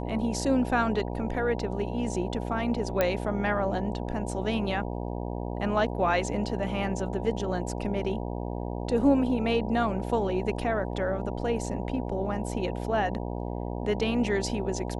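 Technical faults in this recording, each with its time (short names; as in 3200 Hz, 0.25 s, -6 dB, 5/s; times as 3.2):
buzz 60 Hz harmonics 16 -33 dBFS
3.01 pop -11 dBFS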